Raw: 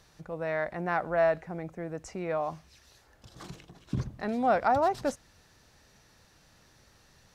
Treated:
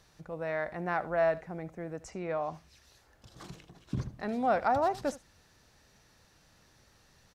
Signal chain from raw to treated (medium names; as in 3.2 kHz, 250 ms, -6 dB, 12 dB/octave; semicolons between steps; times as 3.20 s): 2.10–2.54 s: Bessel low-pass 7.3 kHz; on a send: delay 73 ms -18.5 dB; on the sum: trim -2.5 dB